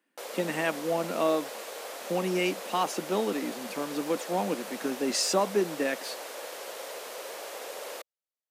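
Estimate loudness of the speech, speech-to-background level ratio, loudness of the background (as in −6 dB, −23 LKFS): −30.0 LKFS, 9.0 dB, −39.0 LKFS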